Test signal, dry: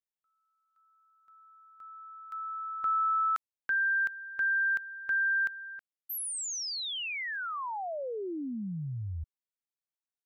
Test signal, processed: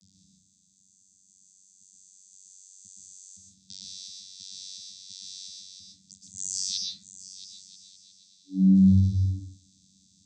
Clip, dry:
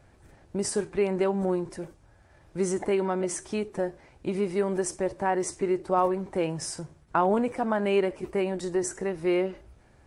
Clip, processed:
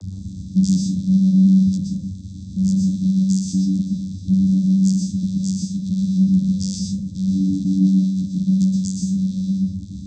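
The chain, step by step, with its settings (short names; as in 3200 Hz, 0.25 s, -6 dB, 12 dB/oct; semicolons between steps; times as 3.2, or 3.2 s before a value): rattling part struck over -34 dBFS, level -29 dBFS; power-law curve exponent 0.35; brick-wall FIR band-stop 220–4300 Hz; vocoder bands 16, saw 94.8 Hz; plate-style reverb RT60 0.54 s, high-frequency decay 0.5×, pre-delay 0.11 s, DRR -1 dB; gain +7.5 dB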